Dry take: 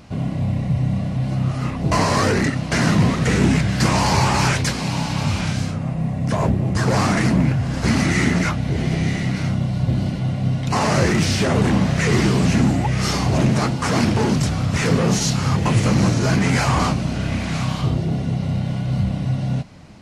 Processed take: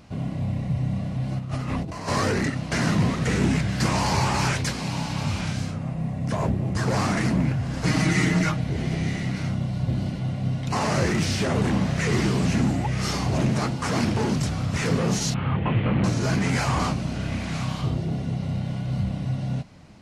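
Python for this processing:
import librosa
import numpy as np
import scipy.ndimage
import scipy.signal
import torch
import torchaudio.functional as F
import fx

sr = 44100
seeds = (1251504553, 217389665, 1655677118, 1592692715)

y = fx.over_compress(x, sr, threshold_db=-26.0, ratio=-1.0, at=(1.38, 2.07), fade=0.02)
y = fx.comb(y, sr, ms=6.4, depth=0.78, at=(7.83, 8.64))
y = fx.steep_lowpass(y, sr, hz=3300.0, slope=48, at=(15.34, 16.04))
y = y * librosa.db_to_amplitude(-5.5)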